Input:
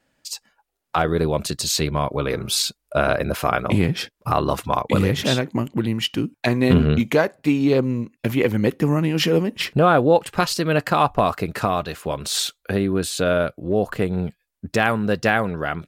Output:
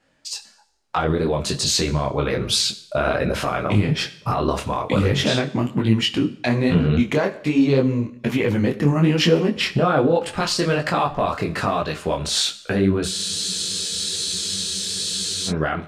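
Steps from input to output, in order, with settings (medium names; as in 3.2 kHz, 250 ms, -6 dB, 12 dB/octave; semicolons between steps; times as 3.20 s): low-pass 7.8 kHz 12 dB/octave; peak limiter -13.5 dBFS, peak gain reduction 9.5 dB; Schroeder reverb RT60 0.68 s, combs from 29 ms, DRR 14 dB; spectral freeze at 13.12 s, 2.36 s; detune thickener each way 41 cents; trim +7.5 dB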